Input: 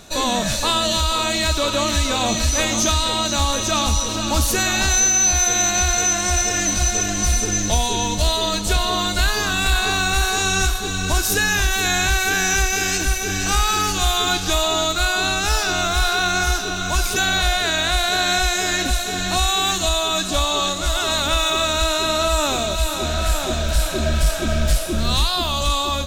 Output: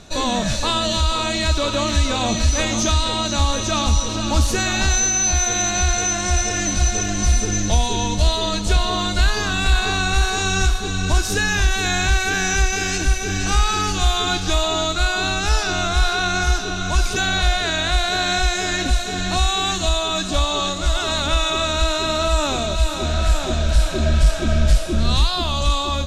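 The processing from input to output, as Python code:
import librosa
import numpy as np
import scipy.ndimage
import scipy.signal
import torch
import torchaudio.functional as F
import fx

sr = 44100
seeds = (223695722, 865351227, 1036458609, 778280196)

y = scipy.signal.sosfilt(scipy.signal.butter(2, 7500.0, 'lowpass', fs=sr, output='sos'), x)
y = fx.low_shelf(y, sr, hz=240.0, db=5.5)
y = F.gain(torch.from_numpy(y), -1.5).numpy()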